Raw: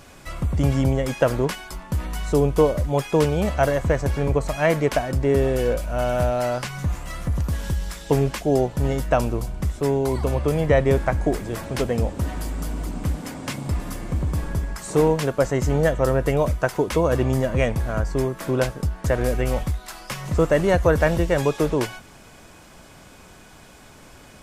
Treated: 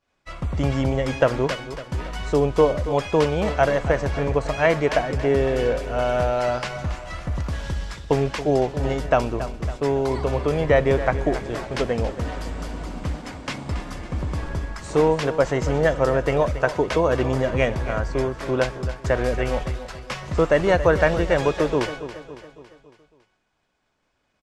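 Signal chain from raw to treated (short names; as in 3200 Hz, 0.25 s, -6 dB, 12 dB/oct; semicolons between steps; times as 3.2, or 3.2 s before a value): low shelf 260 Hz -9.5 dB; expander -33 dBFS; LPF 5200 Hz 12 dB/oct; low shelf 77 Hz +6 dB; feedback echo 0.278 s, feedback 51%, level -13 dB; gain +2.5 dB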